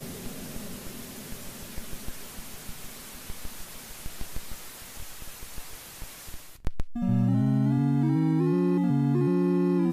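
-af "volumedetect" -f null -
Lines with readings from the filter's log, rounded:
mean_volume: -28.1 dB
max_volume: -14.1 dB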